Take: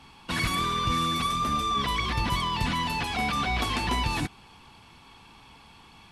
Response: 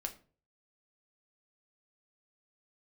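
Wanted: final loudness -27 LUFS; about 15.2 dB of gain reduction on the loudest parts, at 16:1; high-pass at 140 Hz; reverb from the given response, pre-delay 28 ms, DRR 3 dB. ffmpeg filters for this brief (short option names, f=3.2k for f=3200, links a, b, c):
-filter_complex "[0:a]highpass=140,acompressor=threshold=-39dB:ratio=16,asplit=2[a][b];[1:a]atrim=start_sample=2205,adelay=28[c];[b][c]afir=irnorm=-1:irlink=0,volume=-2dB[d];[a][d]amix=inputs=2:normalize=0,volume=13.5dB"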